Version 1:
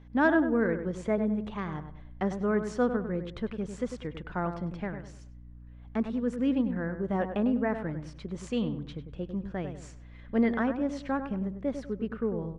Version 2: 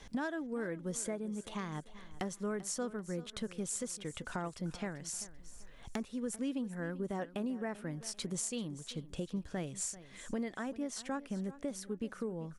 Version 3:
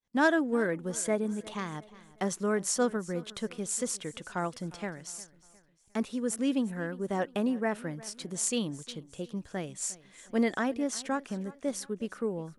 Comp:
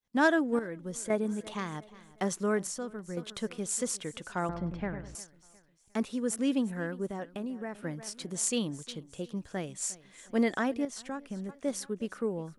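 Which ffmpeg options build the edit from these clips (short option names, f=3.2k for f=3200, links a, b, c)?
-filter_complex "[1:a]asplit=4[a][b][c][d];[2:a]asplit=6[e][f][g][h][i][j];[e]atrim=end=0.592[k];[a]atrim=start=0.588:end=1.102[l];[f]atrim=start=1.098:end=2.672[m];[b]atrim=start=2.668:end=3.172[n];[g]atrim=start=3.168:end=4.492[o];[0:a]atrim=start=4.488:end=5.152[p];[h]atrim=start=5.148:end=7.082[q];[c]atrim=start=7.078:end=7.832[r];[i]atrim=start=7.828:end=10.852[s];[d]atrim=start=10.848:end=11.492[t];[j]atrim=start=11.488[u];[k][l]acrossfade=d=0.004:c1=hsin:c2=hsin[v];[v][m]acrossfade=d=0.004:c1=hsin:c2=hsin[w];[w][n]acrossfade=d=0.004:c1=hsin:c2=hsin[x];[x][o]acrossfade=d=0.004:c1=hsin:c2=hsin[y];[y][p]acrossfade=d=0.004:c1=hsin:c2=hsin[z];[z][q]acrossfade=d=0.004:c1=hsin:c2=hsin[aa];[aa][r]acrossfade=d=0.004:c1=hsin:c2=hsin[ab];[ab][s]acrossfade=d=0.004:c1=hsin:c2=hsin[ac];[ac][t]acrossfade=d=0.004:c1=hsin:c2=hsin[ad];[ad][u]acrossfade=d=0.004:c1=hsin:c2=hsin"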